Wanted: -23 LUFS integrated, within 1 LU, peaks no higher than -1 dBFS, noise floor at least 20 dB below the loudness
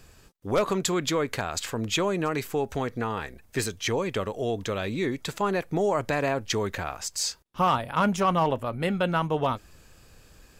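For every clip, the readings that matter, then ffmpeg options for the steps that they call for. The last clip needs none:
loudness -27.5 LUFS; peak -13.0 dBFS; loudness target -23.0 LUFS
-> -af "volume=4.5dB"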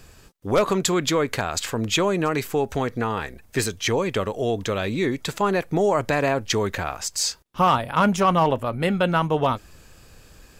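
loudness -23.0 LUFS; peak -8.5 dBFS; noise floor -51 dBFS

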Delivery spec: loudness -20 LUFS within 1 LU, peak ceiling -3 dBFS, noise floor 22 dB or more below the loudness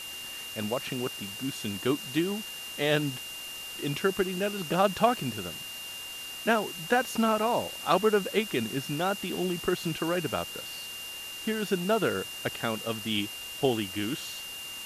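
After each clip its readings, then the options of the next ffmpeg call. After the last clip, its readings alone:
steady tone 2800 Hz; tone level -39 dBFS; noise floor -40 dBFS; noise floor target -52 dBFS; loudness -30.0 LUFS; peak -8.0 dBFS; loudness target -20.0 LUFS
-> -af "bandreject=f=2.8k:w=30"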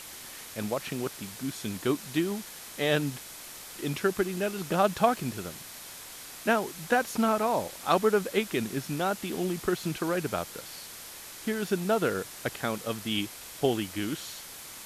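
steady tone none; noise floor -45 dBFS; noise floor target -52 dBFS
-> -af "afftdn=nr=7:nf=-45"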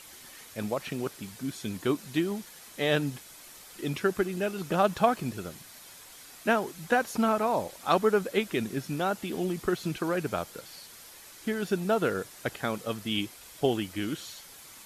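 noise floor -50 dBFS; noise floor target -52 dBFS
-> -af "afftdn=nr=6:nf=-50"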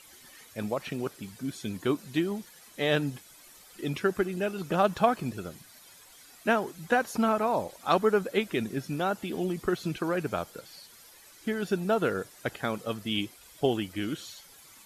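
noise floor -54 dBFS; loudness -30.0 LUFS; peak -8.0 dBFS; loudness target -20.0 LUFS
-> -af "volume=10dB,alimiter=limit=-3dB:level=0:latency=1"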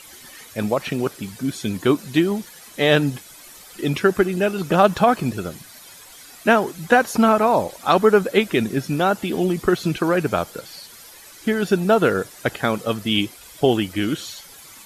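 loudness -20.5 LUFS; peak -3.0 dBFS; noise floor -44 dBFS

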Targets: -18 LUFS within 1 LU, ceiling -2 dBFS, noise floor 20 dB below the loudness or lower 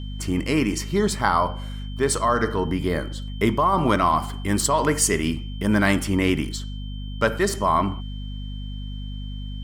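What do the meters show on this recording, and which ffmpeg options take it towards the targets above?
hum 50 Hz; harmonics up to 250 Hz; hum level -29 dBFS; steady tone 3100 Hz; tone level -44 dBFS; loudness -22.5 LUFS; peak -5.0 dBFS; loudness target -18.0 LUFS
-> -af "bandreject=f=50:t=h:w=6,bandreject=f=100:t=h:w=6,bandreject=f=150:t=h:w=6,bandreject=f=200:t=h:w=6,bandreject=f=250:t=h:w=6"
-af "bandreject=f=3.1k:w=30"
-af "volume=4.5dB,alimiter=limit=-2dB:level=0:latency=1"

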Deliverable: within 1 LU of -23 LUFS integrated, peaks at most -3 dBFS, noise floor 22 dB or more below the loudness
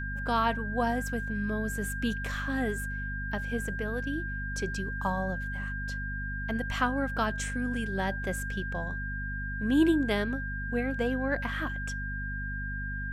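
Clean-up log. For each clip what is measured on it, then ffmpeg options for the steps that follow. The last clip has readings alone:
hum 50 Hz; harmonics up to 250 Hz; hum level -34 dBFS; steady tone 1600 Hz; tone level -36 dBFS; loudness -31.5 LUFS; peak -12.5 dBFS; loudness target -23.0 LUFS
-> -af "bandreject=f=50:t=h:w=6,bandreject=f=100:t=h:w=6,bandreject=f=150:t=h:w=6,bandreject=f=200:t=h:w=6,bandreject=f=250:t=h:w=6"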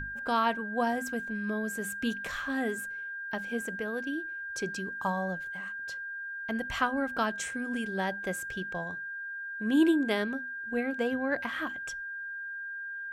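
hum none; steady tone 1600 Hz; tone level -36 dBFS
-> -af "bandreject=f=1.6k:w=30"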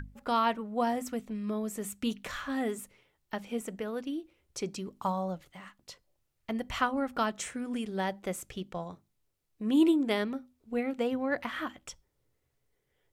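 steady tone none; loudness -33.0 LUFS; peak -14.0 dBFS; loudness target -23.0 LUFS
-> -af "volume=10dB"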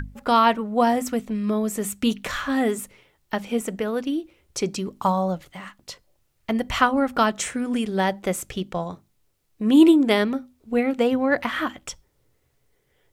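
loudness -23.0 LUFS; peak -4.0 dBFS; noise floor -68 dBFS

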